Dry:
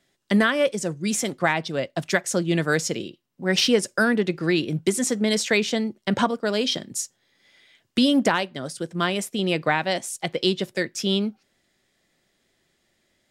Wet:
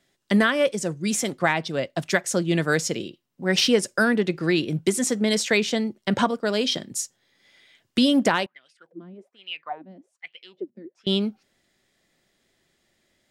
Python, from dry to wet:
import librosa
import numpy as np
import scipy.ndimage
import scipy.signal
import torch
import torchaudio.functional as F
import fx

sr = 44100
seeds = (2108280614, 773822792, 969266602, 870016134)

y = fx.wah_lfo(x, sr, hz=1.2, low_hz=220.0, high_hz=2900.0, q=9.6, at=(8.46, 11.07))